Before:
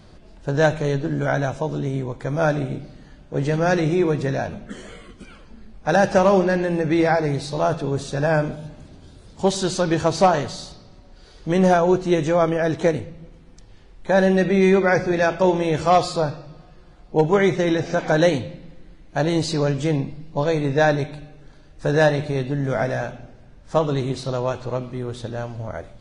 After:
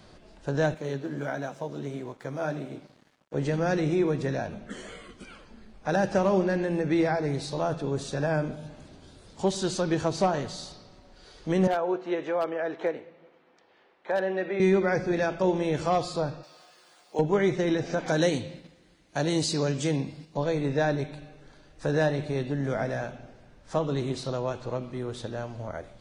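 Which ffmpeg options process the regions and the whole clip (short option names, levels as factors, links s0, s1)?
-filter_complex "[0:a]asettb=1/sr,asplit=3[s0][s1][s2];[s0]atrim=end=0.744[s3];[s1]atrim=start=0.74:end=3.34,asetpts=PTS-STARTPTS,afade=t=in:d=0.004:c=qsin,afade=t=out:st=2.596:d=0.004:c=qsin,highpass=120,flanger=delay=2.8:depth=6.6:regen=-49:speed=1.5:shape=sinusoidal,aeval=exprs='sgn(val(0))*max(abs(val(0))-0.00251,0)':c=same[s4];[s2]atrim=start=3.336[s5];[s3][s4]acrossfade=d=0.004:c1=hsin:c2=qsin[s6];[s6][s5]acrossfade=d=0.004:c1=qsin:c2=hsin,asettb=1/sr,asplit=3[s7][s8][s9];[s7]atrim=end=11.674[s10];[s8]atrim=start=11.67:end=14.6,asetpts=PTS-STARTPTS,afade=t=in:d=0.004:c=qsin,afade=t=out:st=2.926:d=0.004:c=qsin,highpass=440,lowpass=2500,aeval=exprs='0.299*(abs(mod(val(0)/0.299+3,4)-2)-1)':c=same[s11];[s9]atrim=start=14.596[s12];[s10][s11]acrossfade=d=0.004:c1=hsin:c2=qsin[s13];[s13][s12]acrossfade=d=0.004:c1=qsin:c2=hsin,asettb=1/sr,asplit=3[s14][s15][s16];[s14]atrim=end=16.434[s17];[s15]atrim=start=16.43:end=17.19,asetpts=PTS-STARTPTS,afade=t=in:d=0.004:c=qsin,afade=t=out:st=0.756:d=0.004:c=qsin,highpass=f=420:p=1,aemphasis=mode=production:type=riaa[s18];[s16]atrim=start=17.186[s19];[s17][s18]acrossfade=d=0.004:c1=hsin:c2=qsin[s20];[s20][s19]acrossfade=d=0.004:c1=qsin:c2=hsin,asettb=1/sr,asplit=3[s21][s22][s23];[s21]atrim=end=18.064[s24];[s22]atrim=start=18.06:end=20.37,asetpts=PTS-STARTPTS,afade=t=in:d=0.004:c=qsin,afade=t=out:st=2.306:d=0.004:c=qsin,highpass=53,agate=range=0.501:threshold=0.00708:ratio=16:release=100:detection=peak,highshelf=f=3800:g=11[s25];[s23]atrim=start=20.366[s26];[s24][s25]acrossfade=d=0.004:c1=hsin:c2=qsin[s27];[s27][s26]acrossfade=d=0.004:c1=qsin:c2=hsin,lowshelf=f=200:g=-8.5,acrossover=split=370[s28][s29];[s29]acompressor=threshold=0.0112:ratio=1.5[s30];[s28][s30]amix=inputs=2:normalize=0,volume=0.891"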